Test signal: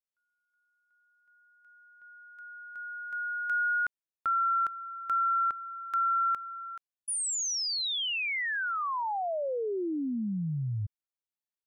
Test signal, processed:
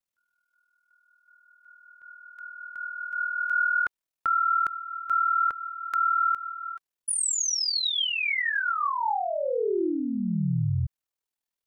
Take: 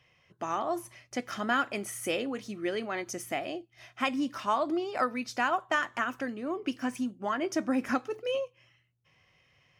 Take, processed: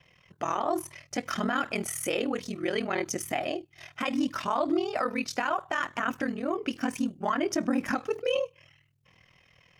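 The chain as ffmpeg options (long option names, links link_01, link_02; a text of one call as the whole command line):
ffmpeg -i in.wav -af "aphaser=in_gain=1:out_gain=1:delay=2.7:decay=0.22:speed=0.66:type=triangular,aeval=exprs='val(0)*sin(2*PI*20*n/s)':channel_layout=same,alimiter=level_in=1dB:limit=-24dB:level=0:latency=1:release=39,volume=-1dB,volume=7.5dB" out.wav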